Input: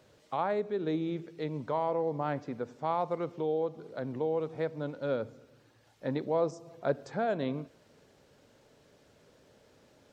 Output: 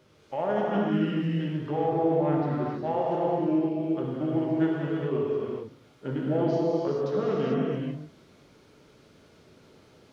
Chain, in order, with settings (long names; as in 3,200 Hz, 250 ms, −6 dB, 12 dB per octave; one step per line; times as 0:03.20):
formants moved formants −4 semitones
reverb whose tail is shaped and stops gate 470 ms flat, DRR −5 dB